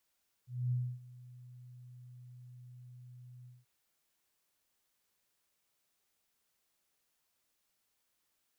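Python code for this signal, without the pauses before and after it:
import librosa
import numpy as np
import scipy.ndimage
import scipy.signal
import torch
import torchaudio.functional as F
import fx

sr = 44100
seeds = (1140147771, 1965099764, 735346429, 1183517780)

y = fx.adsr_tone(sr, wave='sine', hz=124.0, attack_ms=244.0, decay_ms=275.0, sustain_db=-21.0, held_s=2.99, release_ms=192.0, level_db=-29.0)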